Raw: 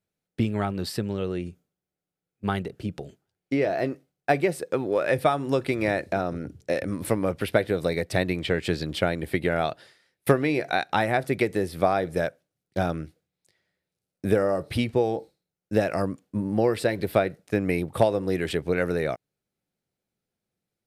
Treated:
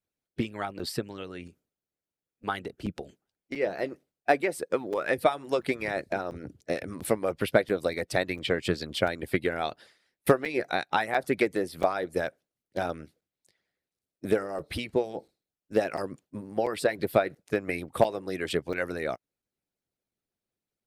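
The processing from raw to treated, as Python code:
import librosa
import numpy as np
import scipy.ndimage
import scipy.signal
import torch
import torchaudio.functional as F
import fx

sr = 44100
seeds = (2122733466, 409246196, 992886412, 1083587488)

y = fx.hpss(x, sr, part='harmonic', gain_db=-18)
y = fx.buffer_crackle(y, sr, first_s=0.79, period_s=0.69, block=256, kind='zero')
y = fx.doppler_dist(y, sr, depth_ms=0.13)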